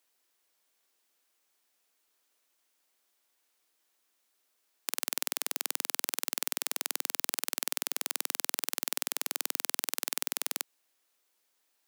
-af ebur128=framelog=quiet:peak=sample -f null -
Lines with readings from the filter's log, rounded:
Integrated loudness:
  I:         -32.1 LUFS
  Threshold: -42.1 LUFS
Loudness range:
  LRA:         6.9 LU
  Threshold: -53.1 LUFS
  LRA low:   -38.6 LUFS
  LRA high:  -31.8 LUFS
Sample peak:
  Peak:       -2.2 dBFS